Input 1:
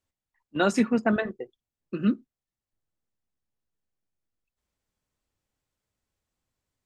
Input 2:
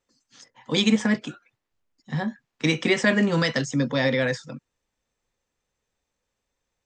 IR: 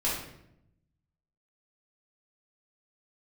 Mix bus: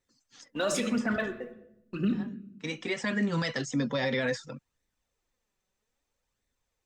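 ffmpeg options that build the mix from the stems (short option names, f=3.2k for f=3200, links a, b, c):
-filter_complex "[0:a]agate=range=-10dB:threshold=-44dB:ratio=16:detection=peak,highshelf=f=3.1k:g=10,aphaser=in_gain=1:out_gain=1:delay=4.8:decay=0.64:speed=0.98:type=triangular,volume=-6.5dB,asplit=3[a][b][c];[b]volume=-15dB[d];[1:a]flanger=delay=0.5:depth=4.8:regen=40:speed=0.62:shape=sinusoidal,volume=1dB[e];[c]apad=whole_len=302297[f];[e][f]sidechaincompress=threshold=-38dB:ratio=3:attack=12:release=1420[g];[2:a]atrim=start_sample=2205[h];[d][h]afir=irnorm=-1:irlink=0[i];[a][g][i]amix=inputs=3:normalize=0,alimiter=limit=-20dB:level=0:latency=1:release=37"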